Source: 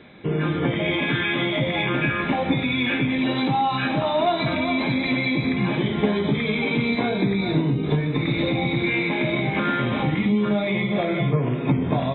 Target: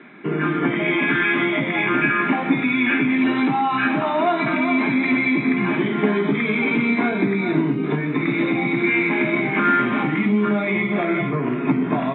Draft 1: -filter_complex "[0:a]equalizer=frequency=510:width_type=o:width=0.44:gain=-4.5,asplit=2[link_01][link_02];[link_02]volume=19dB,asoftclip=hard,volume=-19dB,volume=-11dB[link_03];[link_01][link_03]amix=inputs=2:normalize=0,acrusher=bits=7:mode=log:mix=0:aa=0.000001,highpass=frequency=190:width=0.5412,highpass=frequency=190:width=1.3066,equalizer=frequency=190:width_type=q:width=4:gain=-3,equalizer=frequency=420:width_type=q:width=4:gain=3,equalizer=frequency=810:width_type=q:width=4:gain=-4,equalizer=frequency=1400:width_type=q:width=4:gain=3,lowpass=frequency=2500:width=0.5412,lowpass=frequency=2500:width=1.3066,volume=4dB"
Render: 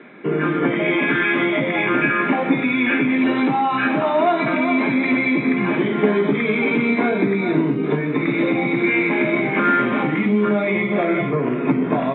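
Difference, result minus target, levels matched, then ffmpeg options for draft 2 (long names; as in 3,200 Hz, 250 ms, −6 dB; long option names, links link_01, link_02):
500 Hz band +3.0 dB
-filter_complex "[0:a]equalizer=frequency=510:width_type=o:width=0.44:gain=-15,asplit=2[link_01][link_02];[link_02]volume=19dB,asoftclip=hard,volume=-19dB,volume=-11dB[link_03];[link_01][link_03]amix=inputs=2:normalize=0,acrusher=bits=7:mode=log:mix=0:aa=0.000001,highpass=frequency=190:width=0.5412,highpass=frequency=190:width=1.3066,equalizer=frequency=190:width_type=q:width=4:gain=-3,equalizer=frequency=420:width_type=q:width=4:gain=3,equalizer=frequency=810:width_type=q:width=4:gain=-4,equalizer=frequency=1400:width_type=q:width=4:gain=3,lowpass=frequency=2500:width=0.5412,lowpass=frequency=2500:width=1.3066,volume=4dB"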